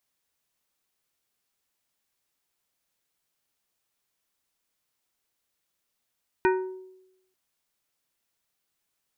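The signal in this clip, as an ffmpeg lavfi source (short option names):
-f lavfi -i "aevalsrc='0.126*pow(10,-3*t/0.9)*sin(2*PI*374*t)+0.0841*pow(10,-3*t/0.474)*sin(2*PI*935*t)+0.0562*pow(10,-3*t/0.341)*sin(2*PI*1496*t)+0.0376*pow(10,-3*t/0.292)*sin(2*PI*1870*t)+0.0251*pow(10,-3*t/0.243)*sin(2*PI*2431*t)':d=0.89:s=44100"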